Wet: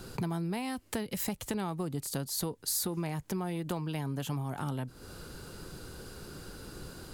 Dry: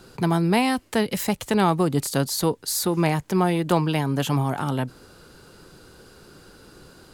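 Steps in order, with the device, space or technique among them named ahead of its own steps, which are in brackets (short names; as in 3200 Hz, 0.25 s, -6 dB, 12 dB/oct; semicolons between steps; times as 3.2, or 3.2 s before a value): ASMR close-microphone chain (low shelf 160 Hz +7.5 dB; compressor 6:1, threshold -33 dBFS, peak gain reduction 18 dB; high shelf 8300 Hz +7 dB)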